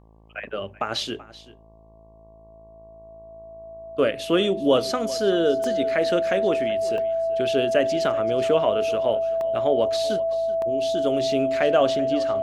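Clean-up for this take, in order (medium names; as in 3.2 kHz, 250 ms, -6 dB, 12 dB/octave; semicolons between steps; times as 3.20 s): de-hum 54.7 Hz, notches 21; band-stop 660 Hz, Q 30; interpolate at 0.95/5.64/6.98/9.41/10.62 s, 1.3 ms; inverse comb 382 ms -18.5 dB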